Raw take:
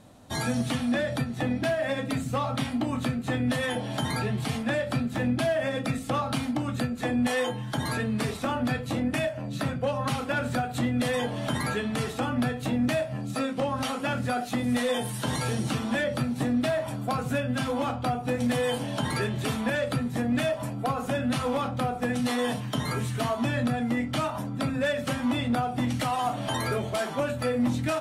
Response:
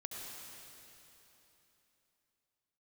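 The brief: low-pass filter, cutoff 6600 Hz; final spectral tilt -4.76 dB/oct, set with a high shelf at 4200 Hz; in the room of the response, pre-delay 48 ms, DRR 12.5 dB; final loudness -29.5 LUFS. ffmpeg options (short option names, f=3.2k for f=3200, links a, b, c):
-filter_complex "[0:a]lowpass=6.6k,highshelf=f=4.2k:g=4.5,asplit=2[a][b];[1:a]atrim=start_sample=2205,adelay=48[c];[b][c]afir=irnorm=-1:irlink=0,volume=-11.5dB[d];[a][d]amix=inputs=2:normalize=0,volume=-1.5dB"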